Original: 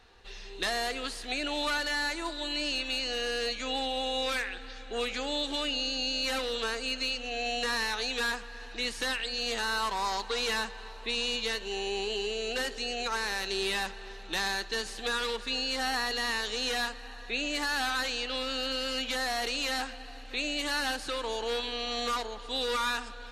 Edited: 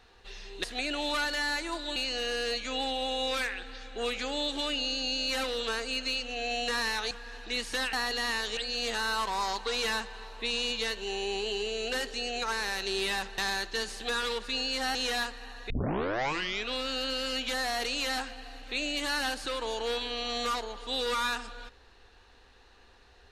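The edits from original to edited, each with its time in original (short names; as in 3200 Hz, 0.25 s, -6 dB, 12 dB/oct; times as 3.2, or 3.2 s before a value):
0.64–1.17 cut
2.49–2.91 cut
8.06–8.39 cut
14.02–14.36 cut
15.93–16.57 move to 9.21
17.32 tape start 1.04 s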